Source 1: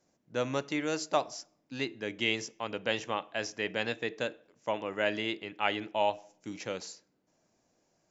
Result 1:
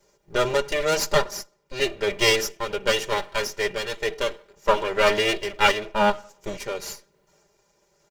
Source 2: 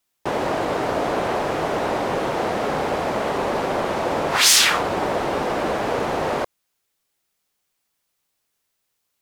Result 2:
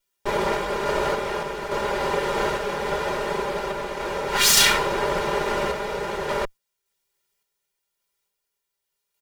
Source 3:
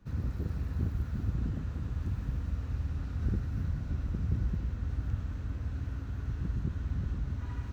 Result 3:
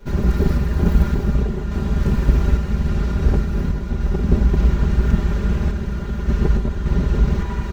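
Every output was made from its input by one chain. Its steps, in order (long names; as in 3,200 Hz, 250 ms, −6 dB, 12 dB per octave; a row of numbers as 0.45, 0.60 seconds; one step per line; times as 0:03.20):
lower of the sound and its delayed copy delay 2.1 ms
comb filter 5 ms, depth 73%
sample-and-hold tremolo 3.5 Hz
normalise the peak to −2 dBFS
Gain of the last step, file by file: +12.5, −0.5, +19.0 decibels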